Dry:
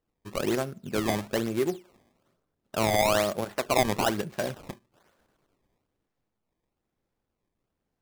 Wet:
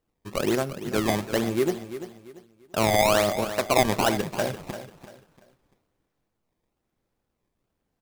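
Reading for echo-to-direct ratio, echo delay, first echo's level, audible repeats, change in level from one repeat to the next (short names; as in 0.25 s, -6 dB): -11.5 dB, 0.342 s, -12.0 dB, 3, -10.0 dB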